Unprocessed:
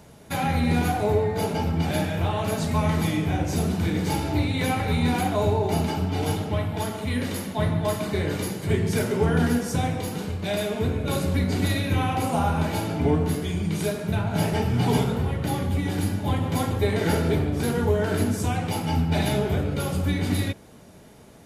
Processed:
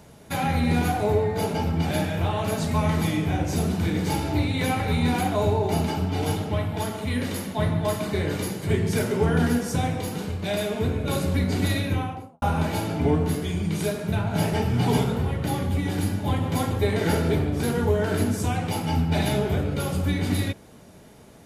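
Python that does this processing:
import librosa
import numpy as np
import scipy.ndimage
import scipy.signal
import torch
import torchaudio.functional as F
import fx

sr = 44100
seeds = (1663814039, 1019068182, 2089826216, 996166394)

y = fx.studio_fade_out(x, sr, start_s=11.77, length_s=0.65)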